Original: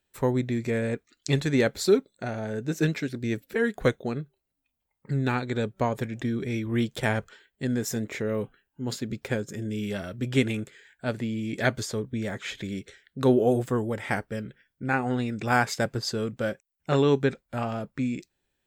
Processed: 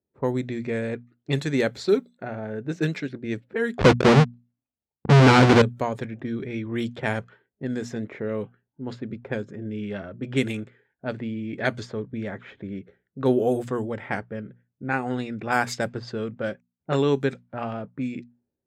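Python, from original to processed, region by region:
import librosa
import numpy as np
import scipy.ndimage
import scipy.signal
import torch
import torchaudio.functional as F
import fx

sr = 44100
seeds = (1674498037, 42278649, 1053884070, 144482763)

y = fx.chain(x, sr, fx.halfwave_hold(),
    fx.leveller(passes=5),
    fx.air_absorb(metres=130.0), at=(3.79, 5.62))
y = scipy.signal.sosfilt(scipy.signal.butter(2, 89.0, 'highpass', fs=sr, output='sos'), y)
y = fx.env_lowpass(y, sr, base_hz=440.0, full_db=-20.5)
y = fx.hum_notches(y, sr, base_hz=60, count=4)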